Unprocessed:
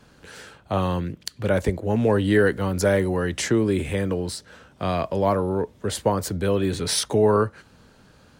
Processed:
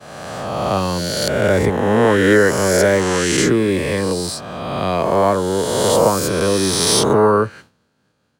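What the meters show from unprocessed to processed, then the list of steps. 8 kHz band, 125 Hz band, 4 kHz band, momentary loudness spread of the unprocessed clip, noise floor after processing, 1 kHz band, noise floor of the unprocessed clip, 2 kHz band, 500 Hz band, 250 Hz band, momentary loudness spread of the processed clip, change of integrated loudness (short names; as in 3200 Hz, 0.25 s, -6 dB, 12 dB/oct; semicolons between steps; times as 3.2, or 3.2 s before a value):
+10.5 dB, +3.5 dB, +10.0 dB, 9 LU, -65 dBFS, +8.5 dB, -55 dBFS, +9.5 dB, +7.0 dB, +5.5 dB, 9 LU, +7.0 dB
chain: spectral swells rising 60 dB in 2.01 s; HPF 100 Hz; expander -38 dBFS; gain +3.5 dB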